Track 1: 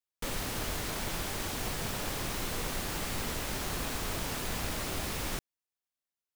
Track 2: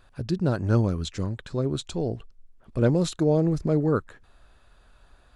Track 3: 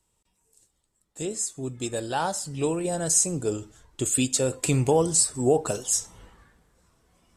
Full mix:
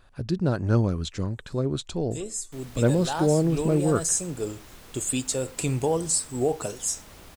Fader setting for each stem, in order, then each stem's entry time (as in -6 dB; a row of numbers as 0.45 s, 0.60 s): -13.5 dB, 0.0 dB, -3.5 dB; 2.30 s, 0.00 s, 0.95 s